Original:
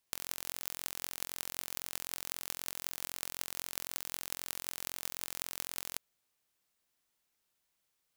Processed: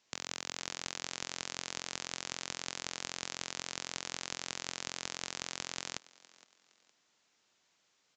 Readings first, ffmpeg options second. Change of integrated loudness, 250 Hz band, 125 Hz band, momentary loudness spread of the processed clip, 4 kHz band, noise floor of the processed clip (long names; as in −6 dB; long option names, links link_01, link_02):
−1.0 dB, +5.0 dB, +4.0 dB, 0 LU, +4.0 dB, −75 dBFS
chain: -filter_complex "[0:a]highpass=150,asplit=2[link_01][link_02];[link_02]acompressor=threshold=-47dB:ratio=6,volume=-3dB[link_03];[link_01][link_03]amix=inputs=2:normalize=0,asplit=3[link_04][link_05][link_06];[link_05]adelay=464,afreqshift=38,volume=-24dB[link_07];[link_06]adelay=928,afreqshift=76,volume=-33.4dB[link_08];[link_04][link_07][link_08]amix=inputs=3:normalize=0,asoftclip=type=tanh:threshold=-8.5dB,acrusher=bits=4:mode=log:mix=0:aa=0.000001,aresample=16000,aresample=44100,volume=6dB"